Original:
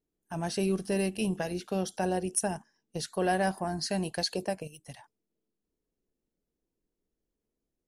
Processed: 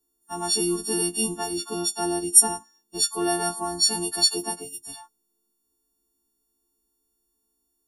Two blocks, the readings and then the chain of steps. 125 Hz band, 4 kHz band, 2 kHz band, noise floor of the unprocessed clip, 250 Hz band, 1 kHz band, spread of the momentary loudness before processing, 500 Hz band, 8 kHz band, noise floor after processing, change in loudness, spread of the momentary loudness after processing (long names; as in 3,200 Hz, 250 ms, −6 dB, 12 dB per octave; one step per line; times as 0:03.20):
−4.5 dB, +13.0 dB, 0.0 dB, below −85 dBFS, +2.5 dB, +3.5 dB, 12 LU, +1.0 dB, +16.5 dB, −75 dBFS, +9.5 dB, 20 LU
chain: every partial snapped to a pitch grid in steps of 4 semitones
phaser with its sweep stopped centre 560 Hz, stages 6
level +6 dB